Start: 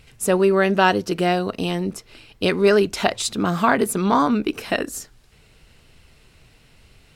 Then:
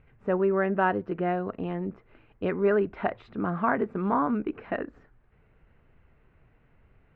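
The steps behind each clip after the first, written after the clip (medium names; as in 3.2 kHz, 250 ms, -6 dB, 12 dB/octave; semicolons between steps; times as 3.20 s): low-pass 1.9 kHz 24 dB/octave; trim -7.5 dB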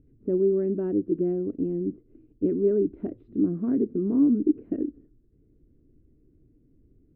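FFT filter 200 Hz 0 dB, 300 Hz +13 dB, 850 Hz -28 dB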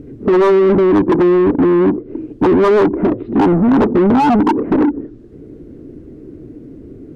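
sine folder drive 9 dB, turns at -11.5 dBFS; low-pass that closes with the level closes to 1.4 kHz, closed at -18 dBFS; overdrive pedal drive 26 dB, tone 1.1 kHz, clips at -11 dBFS; trim +5 dB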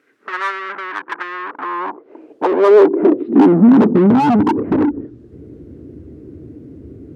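high-pass sweep 1.5 kHz -> 75 Hz, 1.31–4.87 s; trim -2.5 dB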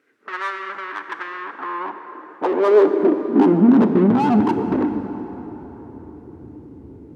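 plate-style reverb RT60 4.4 s, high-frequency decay 0.6×, DRR 7.5 dB; trim -5 dB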